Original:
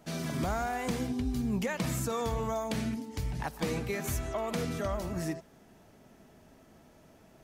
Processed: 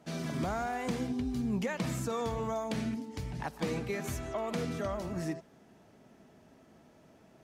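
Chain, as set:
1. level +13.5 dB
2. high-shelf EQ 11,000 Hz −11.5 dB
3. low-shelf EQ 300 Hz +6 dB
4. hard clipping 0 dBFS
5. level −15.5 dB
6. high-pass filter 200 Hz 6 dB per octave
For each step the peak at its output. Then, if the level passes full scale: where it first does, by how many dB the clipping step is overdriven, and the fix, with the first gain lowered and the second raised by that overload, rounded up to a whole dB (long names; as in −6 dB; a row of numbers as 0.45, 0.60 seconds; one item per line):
−6.0, −6.0, −3.5, −3.5, −19.0, −20.5 dBFS
no step passes full scale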